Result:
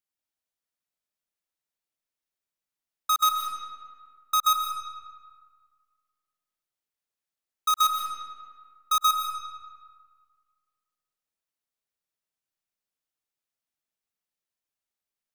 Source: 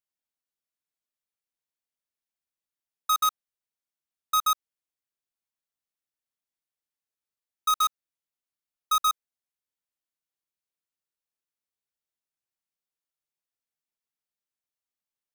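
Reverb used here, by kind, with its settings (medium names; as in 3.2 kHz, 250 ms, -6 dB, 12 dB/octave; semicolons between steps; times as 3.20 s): algorithmic reverb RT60 1.8 s, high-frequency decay 0.65×, pre-delay 95 ms, DRR 3 dB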